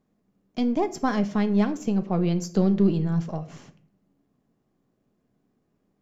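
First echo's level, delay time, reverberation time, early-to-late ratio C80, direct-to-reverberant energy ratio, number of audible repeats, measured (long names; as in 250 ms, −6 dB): no echo audible, no echo audible, 0.50 s, 19.5 dB, 9.5 dB, no echo audible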